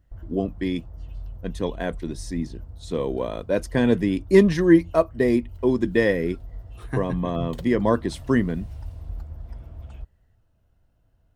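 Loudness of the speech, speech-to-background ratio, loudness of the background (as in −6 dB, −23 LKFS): −23.0 LKFS, 18.0 dB, −41.0 LKFS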